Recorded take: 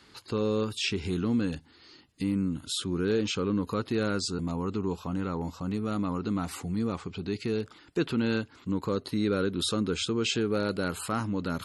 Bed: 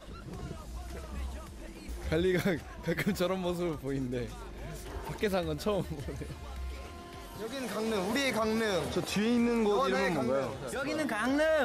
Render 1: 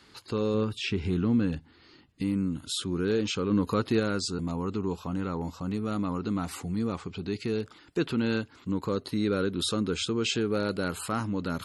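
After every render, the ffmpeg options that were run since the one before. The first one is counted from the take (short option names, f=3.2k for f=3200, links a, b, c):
-filter_complex "[0:a]asettb=1/sr,asplit=3[a][b][c];[a]atrim=end=0.544[d];[b]atrim=start=0.54:end=2.22,asetpts=PTS-STARTPTS,afade=t=in:d=0.004:c=qsin,afade=t=out:st=1.676:d=0.004:c=qsin,bass=f=250:g=4,treble=f=4k:g=-9[e];[c]atrim=start=2.216[f];[d][e]acrossfade=d=0.004:c1=hsin:c2=qsin[g];[g][f]acrossfade=d=0.004:c1=qsin:c2=hsin,asplit=3[h][i][j];[h]atrim=end=3.512[k];[i]atrim=start=3.508:end=4.002,asetpts=PTS-STARTPTS,volume=3.5dB[l];[j]atrim=start=3.998[m];[k][l]acrossfade=d=0.004:c1=hsin:c2=hsin[n];[n][m]acrossfade=d=0.004:c1=hsin:c2=hsin"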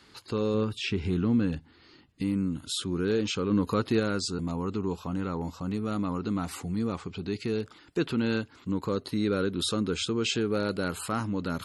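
-af anull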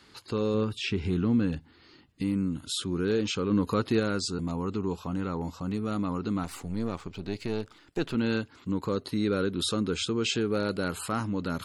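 -filter_complex "[0:a]asettb=1/sr,asplit=3[a][b][c];[a]atrim=end=6.434[d];[b]atrim=start=6.43:end=8.15,asetpts=PTS-STARTPTS,afade=t=in:d=0.004:c=qsin,afade=t=out:st=1.716:d=0.004:c=qsin,aeval=exprs='if(lt(val(0),0),0.447*val(0),val(0))':c=same[e];[c]atrim=start=8.146[f];[d][e]acrossfade=d=0.004:c1=hsin:c2=qsin[g];[g][f]acrossfade=d=0.004:c1=qsin:c2=hsin"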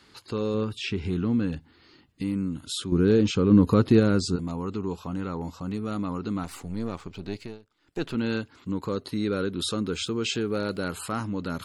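-filter_complex "[0:a]asettb=1/sr,asplit=3[a][b][c];[a]atrim=end=2.924[d];[b]atrim=start=2.92:end=4.36,asetpts=PTS-STARTPTS,afade=t=in:d=0.004:c=qsin,afade=t=out:st=1.436:d=0.004:c=qsin,lowshelf=f=470:g=10.5[e];[c]atrim=start=4.356[f];[d][e]acrossfade=d=0.004:c1=hsin:c2=qsin[g];[g][f]acrossfade=d=0.004:c1=qsin:c2=hsin,asettb=1/sr,asplit=3[h][i][j];[h]atrim=end=9.864[k];[i]atrim=start=9.86:end=10.81,asetpts=PTS-STARTPTS,afade=t=in:d=0.004:c=qsin,afade=t=out:st=0.946:d=0.004:c=qsin,aeval=exprs='val(0)*gte(abs(val(0)),0.00158)':c=same[l];[j]atrim=start=10.806[m];[k][l]acrossfade=d=0.004:c1=hsin:c2=qsin[n];[n][m]acrossfade=d=0.004:c1=qsin:c2=hsin,asplit=3[o][p][q];[o]atrim=end=7.59,asetpts=PTS-STARTPTS,afade=t=out:st=7.34:d=0.25:silence=0.105925[r];[p]atrim=start=7.59:end=7.77,asetpts=PTS-STARTPTS,volume=-19.5dB[s];[q]atrim=start=7.77,asetpts=PTS-STARTPTS,afade=t=in:d=0.25:silence=0.105925[t];[r][s][t]concat=n=3:v=0:a=1"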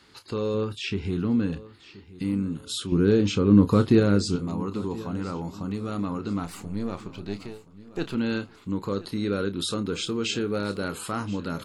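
-filter_complex "[0:a]asplit=2[a][b];[b]adelay=30,volume=-11dB[c];[a][c]amix=inputs=2:normalize=0,aecho=1:1:1027|2054|3081:0.119|0.0511|0.022"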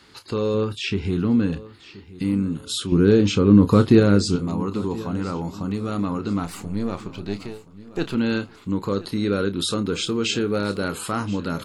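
-af "volume=4.5dB,alimiter=limit=-3dB:level=0:latency=1"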